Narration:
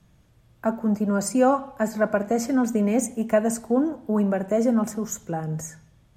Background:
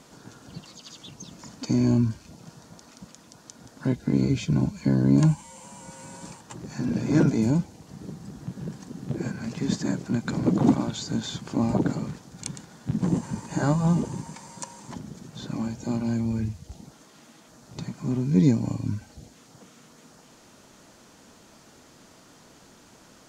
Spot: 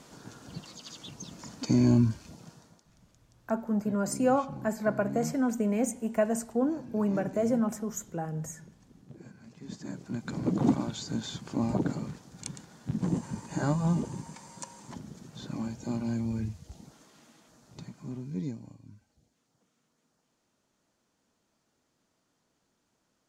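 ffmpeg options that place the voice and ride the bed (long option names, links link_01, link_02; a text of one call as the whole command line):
ffmpeg -i stem1.wav -i stem2.wav -filter_complex "[0:a]adelay=2850,volume=-6dB[link_01];[1:a]volume=13dB,afade=type=out:start_time=2.28:duration=0.57:silence=0.125893,afade=type=in:start_time=9.6:duration=1.05:silence=0.199526,afade=type=out:start_time=16.96:duration=1.81:silence=0.125893[link_02];[link_01][link_02]amix=inputs=2:normalize=0" out.wav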